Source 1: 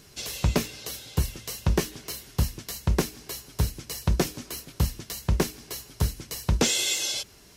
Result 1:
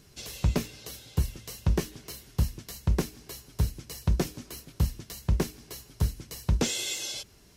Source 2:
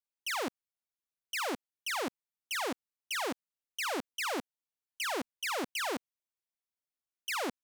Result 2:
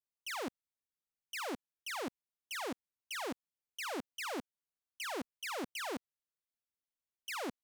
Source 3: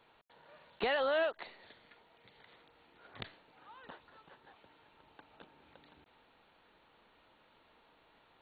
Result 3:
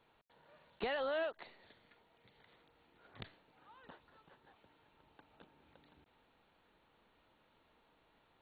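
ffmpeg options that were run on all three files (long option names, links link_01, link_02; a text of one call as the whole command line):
ffmpeg -i in.wav -af "lowshelf=frequency=300:gain=6,volume=-6.5dB" out.wav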